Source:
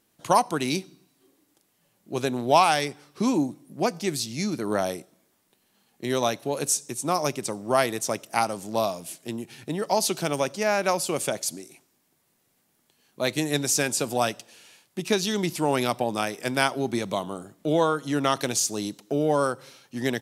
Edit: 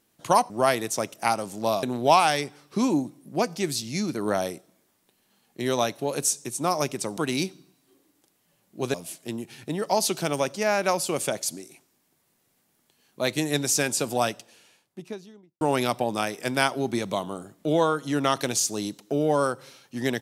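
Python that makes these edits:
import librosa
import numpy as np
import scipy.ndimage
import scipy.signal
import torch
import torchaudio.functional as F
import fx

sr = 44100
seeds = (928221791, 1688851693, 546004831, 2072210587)

y = fx.studio_fade_out(x, sr, start_s=14.15, length_s=1.46)
y = fx.edit(y, sr, fx.swap(start_s=0.5, length_s=1.77, other_s=7.61, other_length_s=1.33), tone=tone)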